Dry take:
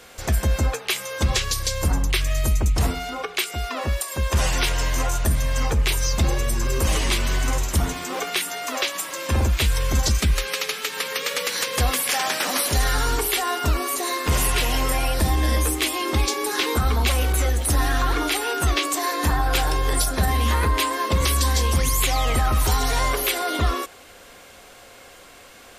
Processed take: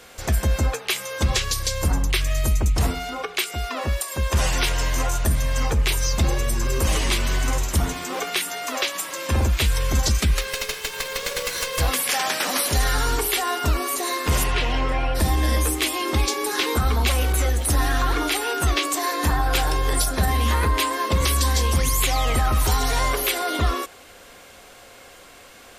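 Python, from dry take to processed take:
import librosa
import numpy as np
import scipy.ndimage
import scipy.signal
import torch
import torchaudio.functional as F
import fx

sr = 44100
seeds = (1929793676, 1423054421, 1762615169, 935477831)

y = fx.lower_of_two(x, sr, delay_ms=1.9, at=(10.41, 11.88))
y = fx.lowpass(y, sr, hz=fx.line((14.43, 4600.0), (15.14, 2300.0)), slope=12, at=(14.43, 15.14), fade=0.02)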